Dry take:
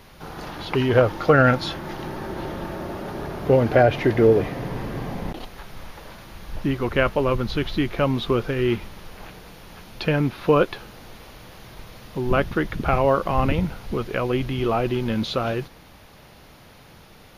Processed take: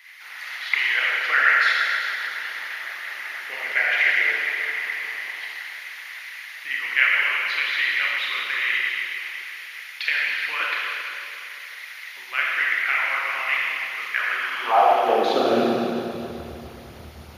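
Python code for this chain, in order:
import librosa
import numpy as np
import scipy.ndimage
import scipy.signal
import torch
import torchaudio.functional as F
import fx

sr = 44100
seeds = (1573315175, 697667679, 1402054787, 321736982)

y = fx.filter_sweep_highpass(x, sr, from_hz=2000.0, to_hz=72.0, start_s=14.11, end_s=16.41, q=7.0)
y = fx.rev_schroeder(y, sr, rt60_s=2.8, comb_ms=26, drr_db=-6.0)
y = fx.hpss(y, sr, part='harmonic', gain_db=-8)
y = y * 10.0 ** (-1.0 / 20.0)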